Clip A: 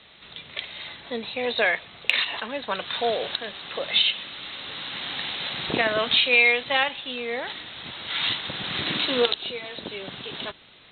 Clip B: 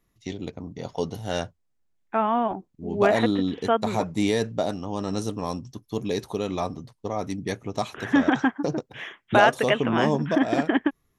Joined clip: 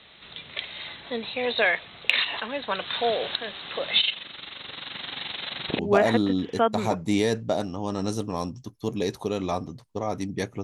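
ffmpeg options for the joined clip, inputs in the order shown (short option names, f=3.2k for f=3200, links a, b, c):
-filter_complex "[0:a]asplit=3[a][b][c];[a]afade=t=out:st=3.99:d=0.02[d];[b]tremolo=f=23:d=0.71,afade=t=in:st=3.99:d=0.02,afade=t=out:st=5.79:d=0.02[e];[c]afade=t=in:st=5.79:d=0.02[f];[d][e][f]amix=inputs=3:normalize=0,apad=whole_dur=10.63,atrim=end=10.63,atrim=end=5.792[g];[1:a]atrim=start=2.878:end=7.72[h];[g][h]acrossfade=d=0.004:c1=hsin:c2=hsin"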